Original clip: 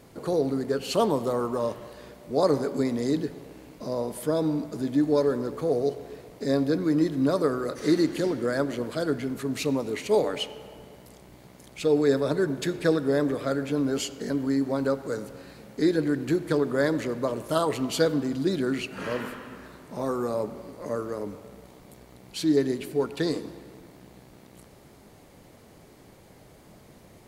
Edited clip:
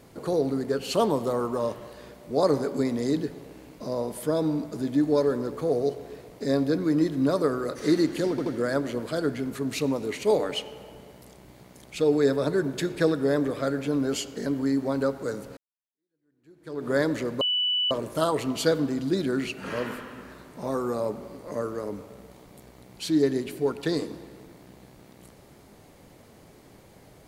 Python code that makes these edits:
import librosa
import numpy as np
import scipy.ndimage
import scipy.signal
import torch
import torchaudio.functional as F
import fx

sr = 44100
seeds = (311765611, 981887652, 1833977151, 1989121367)

y = fx.edit(x, sr, fx.stutter(start_s=8.3, slice_s=0.08, count=3),
    fx.fade_in_span(start_s=15.41, length_s=1.32, curve='exp'),
    fx.insert_tone(at_s=17.25, length_s=0.5, hz=2970.0, db=-22.0), tone=tone)